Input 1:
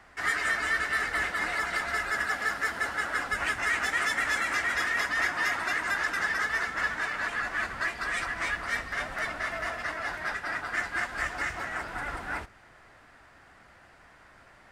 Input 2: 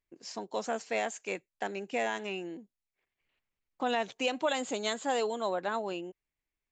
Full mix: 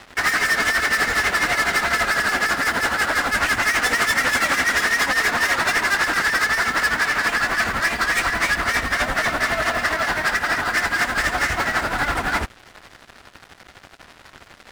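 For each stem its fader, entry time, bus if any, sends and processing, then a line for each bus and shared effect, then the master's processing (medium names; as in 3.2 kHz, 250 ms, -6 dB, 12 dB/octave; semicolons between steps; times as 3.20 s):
+1.5 dB, 0.00 s, no send, none
-11.5 dB, 0.00 s, no send, none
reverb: none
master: peaking EQ 240 Hz +4 dB 0.29 oct; waveshaping leveller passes 5; tremolo triangle 12 Hz, depth 70%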